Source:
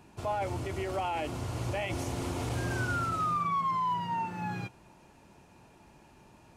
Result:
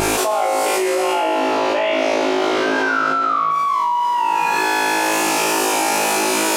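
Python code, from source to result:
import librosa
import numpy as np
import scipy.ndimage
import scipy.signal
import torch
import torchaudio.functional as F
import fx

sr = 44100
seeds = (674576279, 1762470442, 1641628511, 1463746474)

y = scipy.signal.sosfilt(scipy.signal.butter(4, 310.0, 'highpass', fs=sr, output='sos'), x)
y = fx.high_shelf(y, sr, hz=5200.0, db=10.5)
y = fx.wow_flutter(y, sr, seeds[0], rate_hz=2.1, depth_cents=87.0)
y = fx.air_absorb(y, sr, metres=250.0, at=(0.98, 3.51))
y = fx.room_flutter(y, sr, wall_m=3.2, rt60_s=1.4)
y = fx.env_flatten(y, sr, amount_pct=100)
y = y * librosa.db_to_amplitude(-3.0)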